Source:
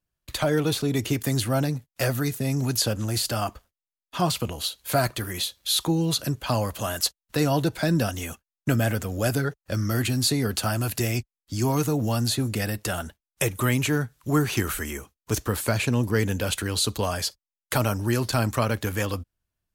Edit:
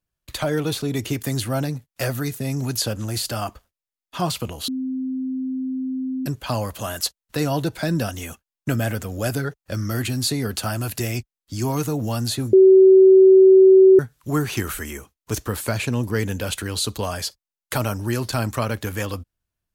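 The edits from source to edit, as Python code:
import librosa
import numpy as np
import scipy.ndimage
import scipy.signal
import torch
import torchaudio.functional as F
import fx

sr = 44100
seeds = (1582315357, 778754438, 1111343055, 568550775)

y = fx.edit(x, sr, fx.bleep(start_s=4.68, length_s=1.58, hz=260.0, db=-23.0),
    fx.bleep(start_s=12.53, length_s=1.46, hz=380.0, db=-7.0), tone=tone)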